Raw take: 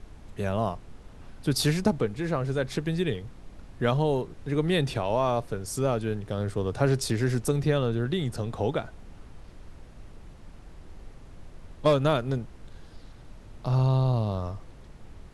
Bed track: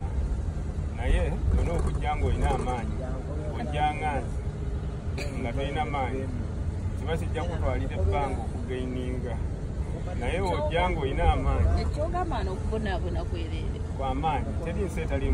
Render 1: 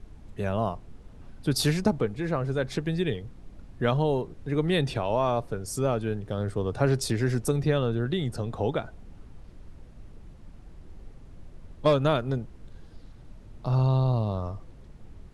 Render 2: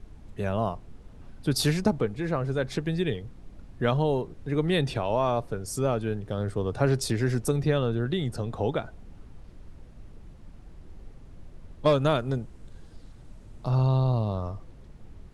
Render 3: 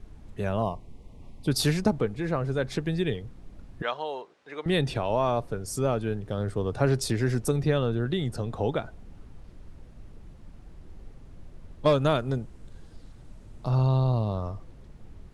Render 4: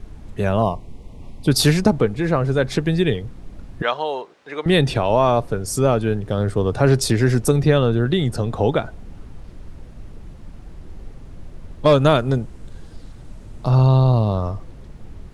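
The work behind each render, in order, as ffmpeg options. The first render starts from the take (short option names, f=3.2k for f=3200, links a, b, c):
-af "afftdn=nr=6:nf=-49"
-filter_complex "[0:a]asettb=1/sr,asplit=3[a][b][c];[a]atrim=end=11.944[d];[b]atrim=start=11.94:end=13.7,asetpts=PTS-STARTPTS,afade=t=in:d=0.004:c=qsin,afade=t=out:st=1.756:d=0.004:c=qsin,equalizer=f=8.2k:w=1.5:g=6[e];[c]atrim=start=13.696[f];[d][e]acrossfade=d=0.004:c1=hsin:c2=qsin[g];[g][f]acrossfade=d=0.004:c1=qsin:c2=hsin"
-filter_complex "[0:a]asettb=1/sr,asplit=3[a][b][c];[a]atrim=end=0.624[d];[b]atrim=start=0.62:end=1.48,asetpts=PTS-STARTPTS,afade=t=in:d=0.004:c=qsin,afade=t=out:st=0.856:d=0.004:c=qsin,asuperstop=centerf=1500:order=8:qfactor=1.9[e];[c]atrim=start=1.476[f];[d][e]acrossfade=d=0.004:c1=hsin:c2=qsin[g];[g][f]acrossfade=d=0.004:c1=qsin:c2=hsin,asettb=1/sr,asplit=3[h][i][j];[h]atrim=end=3.824[k];[i]atrim=start=3.82:end=4.66,asetpts=PTS-STARTPTS,afade=t=in:d=0.004:c=qsin,afade=t=out:st=0.836:d=0.004:c=qsin,highpass=740,lowpass=5.9k[l];[j]atrim=start=4.656[m];[k][l]acrossfade=d=0.004:c1=hsin:c2=qsin[n];[n][m]acrossfade=d=0.004:c1=qsin:c2=hsin"
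-af "volume=9dB,alimiter=limit=-3dB:level=0:latency=1"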